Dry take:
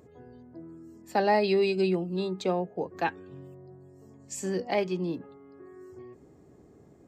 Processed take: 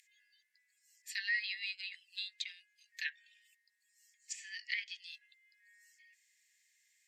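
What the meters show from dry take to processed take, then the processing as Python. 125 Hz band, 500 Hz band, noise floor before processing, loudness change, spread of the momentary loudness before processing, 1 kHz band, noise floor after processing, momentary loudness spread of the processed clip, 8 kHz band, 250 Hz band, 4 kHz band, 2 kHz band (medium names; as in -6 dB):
under -40 dB, under -40 dB, -56 dBFS, -11.0 dB, 23 LU, under -40 dB, -78 dBFS, 18 LU, -6.0 dB, under -40 dB, -0.5 dB, -1.0 dB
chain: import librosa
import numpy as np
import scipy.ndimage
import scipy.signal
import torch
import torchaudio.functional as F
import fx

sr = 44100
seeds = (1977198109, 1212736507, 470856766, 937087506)

y = scipy.signal.sosfilt(scipy.signal.butter(16, 1800.0, 'highpass', fs=sr, output='sos'), x)
y = fx.dynamic_eq(y, sr, hz=2500.0, q=3.8, threshold_db=-54.0, ratio=4.0, max_db=-8)
y = fx.env_lowpass_down(y, sr, base_hz=2600.0, full_db=-39.0)
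y = F.gain(torch.from_numpy(y), 5.5).numpy()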